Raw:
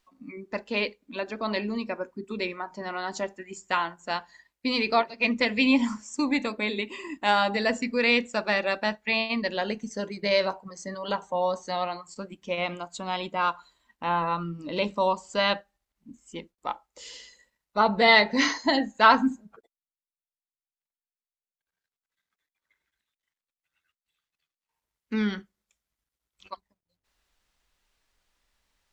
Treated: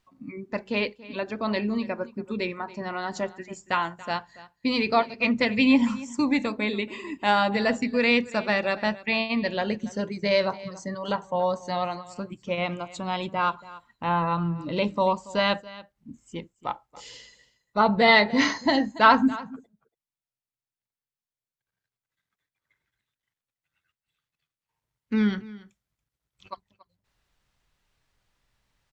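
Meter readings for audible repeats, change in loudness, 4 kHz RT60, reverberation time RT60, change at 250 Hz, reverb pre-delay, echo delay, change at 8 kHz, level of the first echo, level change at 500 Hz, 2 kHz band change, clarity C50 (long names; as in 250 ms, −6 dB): 1, +1.0 dB, no reverb audible, no reverb audible, +3.5 dB, no reverb audible, 282 ms, −2.5 dB, −19.0 dB, +1.5 dB, 0.0 dB, no reverb audible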